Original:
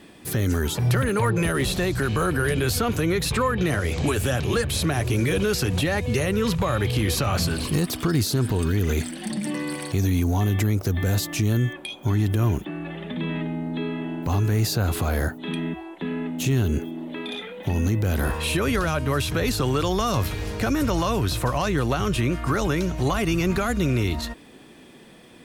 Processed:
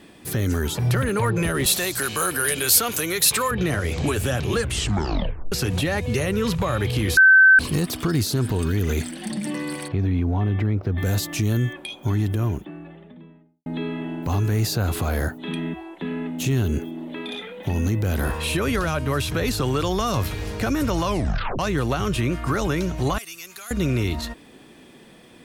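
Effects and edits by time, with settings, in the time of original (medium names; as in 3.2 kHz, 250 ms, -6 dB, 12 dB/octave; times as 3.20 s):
1.66–3.51 s: RIAA curve recording
4.59 s: tape stop 0.93 s
7.17–7.59 s: bleep 1.54 kHz -8.5 dBFS
9.88–10.98 s: distance through air 390 m
11.93–13.66 s: studio fade out
21.06 s: tape stop 0.53 s
23.18–23.71 s: differentiator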